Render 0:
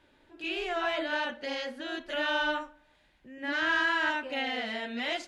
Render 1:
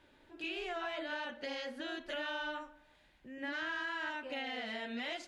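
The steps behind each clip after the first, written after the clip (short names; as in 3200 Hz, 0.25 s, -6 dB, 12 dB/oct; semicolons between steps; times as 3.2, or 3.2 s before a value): compressor 4:1, threshold -37 dBFS, peak gain reduction 11.5 dB; gain -1 dB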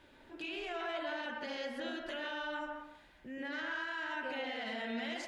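limiter -37 dBFS, peak gain reduction 8 dB; on a send at -3 dB: reverb RT60 0.60 s, pre-delay 0.114 s; on the sum: gain +3.5 dB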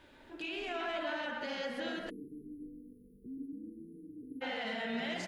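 frequency-shifting echo 0.267 s, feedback 40%, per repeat -50 Hz, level -10 dB; spectral delete 2.09–4.42, 490–9400 Hz; gain +1.5 dB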